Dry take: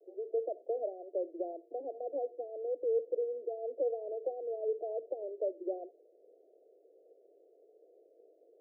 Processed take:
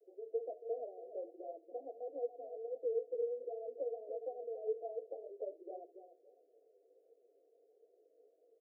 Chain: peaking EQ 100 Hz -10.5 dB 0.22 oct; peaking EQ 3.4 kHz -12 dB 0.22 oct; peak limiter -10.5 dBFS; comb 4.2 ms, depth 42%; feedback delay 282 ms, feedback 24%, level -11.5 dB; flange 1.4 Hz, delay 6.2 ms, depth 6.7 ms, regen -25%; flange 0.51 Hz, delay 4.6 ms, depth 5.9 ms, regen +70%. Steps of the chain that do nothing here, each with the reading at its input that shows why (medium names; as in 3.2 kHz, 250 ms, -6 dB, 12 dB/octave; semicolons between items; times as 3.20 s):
peaking EQ 100 Hz: input has nothing below 270 Hz; peaking EQ 3.4 kHz: input has nothing above 810 Hz; peak limiter -10.5 dBFS: peak at its input -23.0 dBFS